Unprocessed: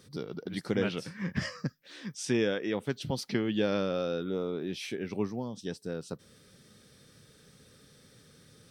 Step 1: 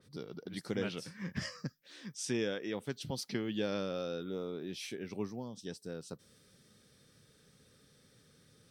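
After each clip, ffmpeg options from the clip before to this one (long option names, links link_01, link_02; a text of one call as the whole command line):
ffmpeg -i in.wav -af "adynamicequalizer=threshold=0.00251:dfrequency=3900:dqfactor=0.7:tfrequency=3900:tqfactor=0.7:attack=5:release=100:ratio=0.375:range=3:mode=boostabove:tftype=highshelf,volume=-6.5dB" out.wav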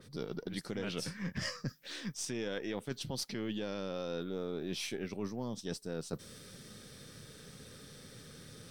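ffmpeg -i in.wav -af "aeval=exprs='if(lt(val(0),0),0.708*val(0),val(0))':channel_layout=same,alimiter=level_in=4.5dB:limit=-24dB:level=0:latency=1,volume=-4.5dB,areverse,acompressor=threshold=-50dB:ratio=4,areverse,volume=13.5dB" out.wav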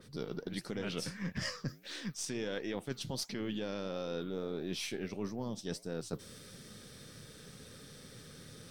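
ffmpeg -i in.wav -af "flanger=delay=3.1:depth=9.3:regen=-86:speed=1.5:shape=triangular,volume=4.5dB" out.wav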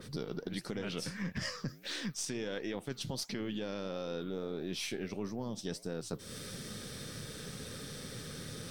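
ffmpeg -i in.wav -af "acompressor=threshold=-45dB:ratio=3,volume=8dB" out.wav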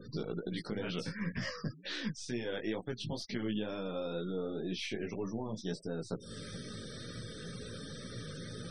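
ffmpeg -i in.wav -filter_complex "[0:a]flanger=delay=16.5:depth=2.5:speed=2.1,afftfilt=real='re*gte(hypot(re,im),0.00316)':imag='im*gte(hypot(re,im),0.00316)':win_size=1024:overlap=0.75,acrossover=split=4600[link_01][link_02];[link_02]acompressor=threshold=-58dB:ratio=4:attack=1:release=60[link_03];[link_01][link_03]amix=inputs=2:normalize=0,volume=4dB" out.wav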